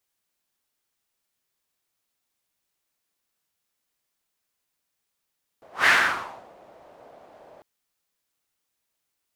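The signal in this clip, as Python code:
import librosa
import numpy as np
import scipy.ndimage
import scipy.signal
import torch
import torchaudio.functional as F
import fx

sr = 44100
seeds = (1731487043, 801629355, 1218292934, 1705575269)

y = fx.whoosh(sr, seeds[0], length_s=2.0, peak_s=0.25, rise_s=0.17, fall_s=0.69, ends_hz=630.0, peak_hz=1800.0, q=3.0, swell_db=33.0)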